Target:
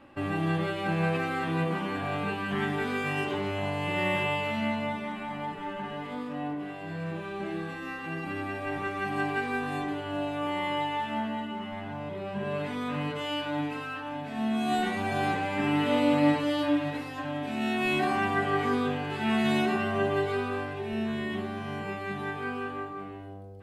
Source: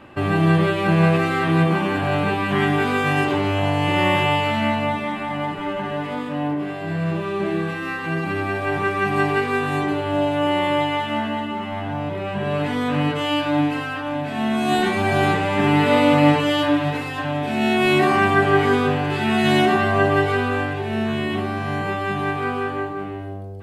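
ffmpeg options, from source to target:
-af "flanger=delay=3.6:depth=1.3:regen=46:speed=0.12:shape=sinusoidal,volume=-5.5dB"

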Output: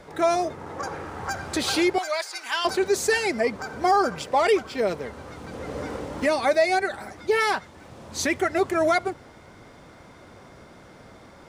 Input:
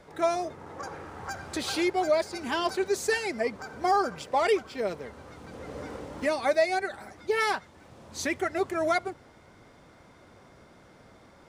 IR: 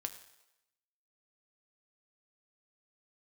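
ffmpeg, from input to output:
-filter_complex "[0:a]asettb=1/sr,asplit=3[a][b][c];[a]atrim=end=1.984[d];[b]atrim=start=1.98:end=2.65,asetpts=PTS-STARTPTS,afade=t=in:d=0.004:c=qsin,afade=t=out:st=0.666:d=0.004:c=qsin,highpass=1.2k[e];[c]atrim=start=2.646[f];[d][e]acrossfade=d=0.004:c1=hsin:c2=qsin[g];[g][f]acrossfade=d=0.004:c1=qsin:c2=hsin,asplit=2[h][i];[i]alimiter=limit=-21.5dB:level=0:latency=1:release=32,volume=3dB[j];[h][j]amix=inputs=2:normalize=0,volume=-1dB"

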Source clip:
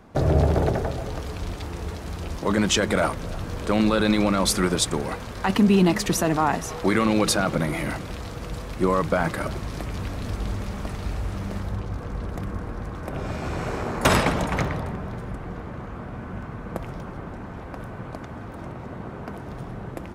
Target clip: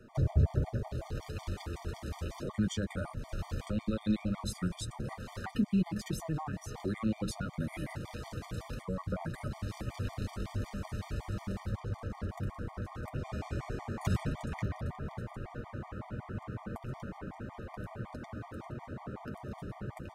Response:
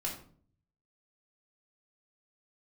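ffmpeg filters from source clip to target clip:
-filter_complex "[0:a]acrossover=split=200[a][b];[b]acompressor=threshold=-35dB:ratio=4[c];[a][c]amix=inputs=2:normalize=0,flanger=delay=8:depth=2:regen=-29:speed=1.6:shape=triangular,afftfilt=real='re*gt(sin(2*PI*5.4*pts/sr)*(1-2*mod(floor(b*sr/1024/610),2)),0)':imag='im*gt(sin(2*PI*5.4*pts/sr)*(1-2*mod(floor(b*sr/1024/610),2)),0)':win_size=1024:overlap=0.75"

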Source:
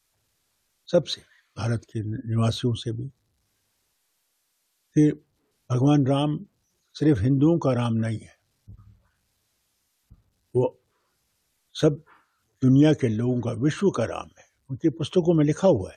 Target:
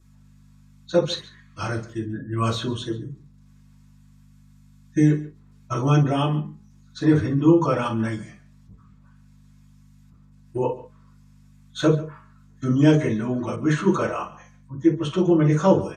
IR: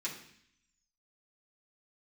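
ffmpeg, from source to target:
-filter_complex "[0:a]equalizer=f=1.1k:w=1.3:g=9.5,bandreject=f=208.7:t=h:w=4,bandreject=f=417.4:t=h:w=4,bandreject=f=626.1:t=h:w=4,bandreject=f=834.8:t=h:w=4,bandreject=f=1.0435k:t=h:w=4,bandreject=f=1.2522k:t=h:w=4,bandreject=f=1.4609k:t=h:w=4,bandreject=f=1.6696k:t=h:w=4,bandreject=f=1.8783k:t=h:w=4,aeval=exprs='val(0)+0.00316*(sin(2*PI*50*n/s)+sin(2*PI*2*50*n/s)/2+sin(2*PI*3*50*n/s)/3+sin(2*PI*4*50*n/s)/4+sin(2*PI*5*50*n/s)/5)':c=same,asplit=2[a][b];[b]adelay=139.9,volume=-18dB,highshelf=f=4k:g=-3.15[c];[a][c]amix=inputs=2:normalize=0[d];[1:a]atrim=start_sample=2205,atrim=end_sample=3087[e];[d][e]afir=irnorm=-1:irlink=0,asettb=1/sr,asplit=3[f][g][h];[f]atrim=end=13.564[i];[g]atrim=start=13.56:end=15.6,asetpts=PTS-STARTPTS,afade=t=in:d=0.004:c=qsin,afade=t=out:st=2.036:d=0.004:c=qsin,adynamicequalizer=threshold=0.00708:dfrequency=2400:dqfactor=0.7:tfrequency=2400:tqfactor=0.7:attack=5:release=100:ratio=0.375:range=2.5:mode=cutabove:tftype=highshelf[j];[h]atrim=start=15.596[k];[i][j]acrossfade=d=0.004:c1=hsin:c2=qsin[l];[l][k]acrossfade=d=0.004:c1=qsin:c2=hsin"

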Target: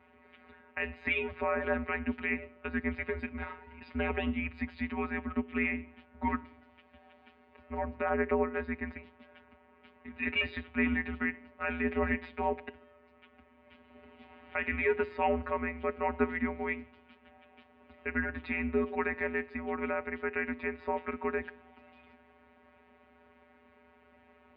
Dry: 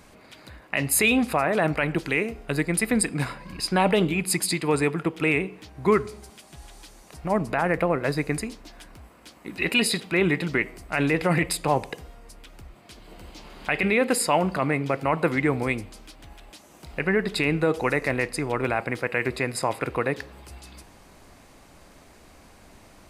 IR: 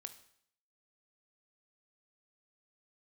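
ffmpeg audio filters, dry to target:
-af "afftfilt=real='hypot(re,im)*cos(PI*b)':imag='0':win_size=1024:overlap=0.75,atempo=0.94,highpass=f=220:t=q:w=0.5412,highpass=f=220:t=q:w=1.307,lowpass=f=2.9k:t=q:w=0.5176,lowpass=f=2.9k:t=q:w=0.7071,lowpass=f=2.9k:t=q:w=1.932,afreqshift=-100,volume=-4dB"

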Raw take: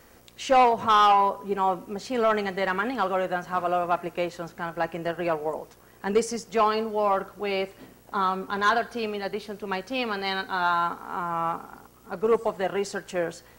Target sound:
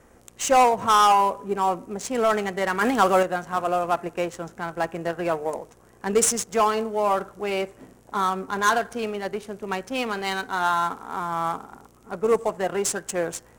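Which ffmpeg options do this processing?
-filter_complex "[0:a]asettb=1/sr,asplit=3[a][b][c];[a]atrim=end=2.814[d];[b]atrim=start=2.81:end=3.23,asetpts=PTS-STARTPTS,afade=t=in:d=0.004:c=qsin,afade=t=out:st=0.416:d=0.004:c=qsin,acontrast=49[e];[c]atrim=start=3.226[f];[d][e]acrossfade=d=0.004:c1=hsin:c2=qsin[g];[g][f]acrossfade=d=0.004:c1=qsin:c2=hsin,aexciter=amount=9.9:drive=6.1:freq=6.4k,adynamicsmooth=sensitivity=5.5:basefreq=2k,volume=1.5dB"

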